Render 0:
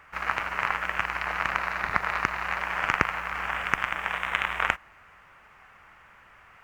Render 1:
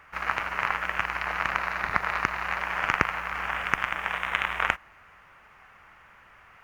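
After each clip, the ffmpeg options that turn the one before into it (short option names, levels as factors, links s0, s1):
-af "bandreject=f=7700:w=11"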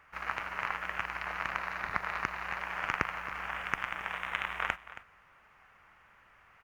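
-af "aecho=1:1:273:0.168,volume=0.422"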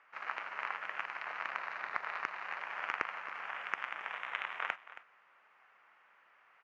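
-af "highpass=400,lowpass=4700,volume=0.631"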